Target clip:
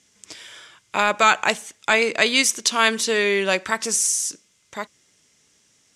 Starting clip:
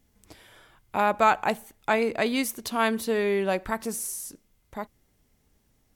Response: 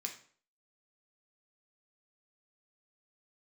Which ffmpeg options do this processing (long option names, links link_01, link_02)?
-af "highpass=150,equalizer=frequency=240:width_type=q:width=4:gain=-4,equalizer=frequency=780:width_type=q:width=4:gain=-6,equalizer=frequency=4300:width_type=q:width=4:gain=-5,lowpass=frequency=6900:width=0.5412,lowpass=frequency=6900:width=1.3066,apsyclip=15dB,crystalizer=i=9:c=0,volume=-12.5dB"